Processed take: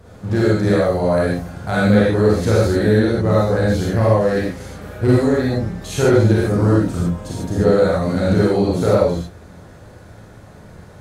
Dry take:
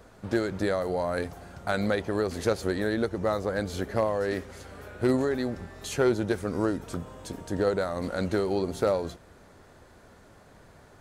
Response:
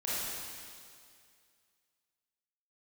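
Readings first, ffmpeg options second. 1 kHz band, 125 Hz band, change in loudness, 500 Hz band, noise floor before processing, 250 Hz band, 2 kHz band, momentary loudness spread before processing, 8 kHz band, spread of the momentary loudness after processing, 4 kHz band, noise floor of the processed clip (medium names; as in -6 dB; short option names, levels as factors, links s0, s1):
+9.0 dB, +18.0 dB, +12.0 dB, +11.0 dB, -54 dBFS, +12.5 dB, +9.5 dB, 12 LU, +8.5 dB, 9 LU, +8.5 dB, -42 dBFS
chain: -filter_complex "[0:a]equalizer=f=110:t=o:w=1.7:g=12.5[s0];[1:a]atrim=start_sample=2205,atrim=end_sample=6174,asetrate=39249,aresample=44100[s1];[s0][s1]afir=irnorm=-1:irlink=0,volume=1.58"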